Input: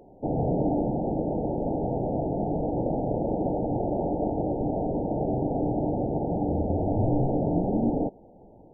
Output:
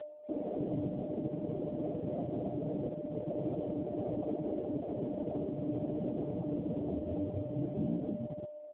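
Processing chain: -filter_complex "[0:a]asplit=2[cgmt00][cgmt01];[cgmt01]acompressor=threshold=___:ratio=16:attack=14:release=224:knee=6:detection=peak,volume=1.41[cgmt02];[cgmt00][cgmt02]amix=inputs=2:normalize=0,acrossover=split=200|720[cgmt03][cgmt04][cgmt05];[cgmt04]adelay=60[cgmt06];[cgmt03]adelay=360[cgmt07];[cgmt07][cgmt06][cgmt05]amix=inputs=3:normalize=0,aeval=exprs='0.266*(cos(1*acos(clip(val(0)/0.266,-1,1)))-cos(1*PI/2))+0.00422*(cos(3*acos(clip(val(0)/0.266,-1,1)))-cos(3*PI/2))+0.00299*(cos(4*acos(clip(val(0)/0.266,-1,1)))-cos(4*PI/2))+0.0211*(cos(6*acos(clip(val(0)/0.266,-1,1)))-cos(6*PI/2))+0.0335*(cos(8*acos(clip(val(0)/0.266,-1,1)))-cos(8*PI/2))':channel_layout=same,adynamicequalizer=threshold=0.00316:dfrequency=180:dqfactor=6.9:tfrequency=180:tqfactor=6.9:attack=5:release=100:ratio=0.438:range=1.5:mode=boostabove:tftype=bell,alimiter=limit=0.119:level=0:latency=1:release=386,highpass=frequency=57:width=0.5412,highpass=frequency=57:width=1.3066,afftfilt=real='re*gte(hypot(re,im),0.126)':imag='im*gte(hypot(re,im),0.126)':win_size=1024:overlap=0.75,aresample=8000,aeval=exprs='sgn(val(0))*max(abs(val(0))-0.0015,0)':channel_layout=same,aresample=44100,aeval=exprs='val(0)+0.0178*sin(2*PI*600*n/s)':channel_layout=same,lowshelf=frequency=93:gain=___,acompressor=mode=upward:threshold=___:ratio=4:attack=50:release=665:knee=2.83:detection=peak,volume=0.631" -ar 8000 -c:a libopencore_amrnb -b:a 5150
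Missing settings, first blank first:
0.0112, -3, 0.0178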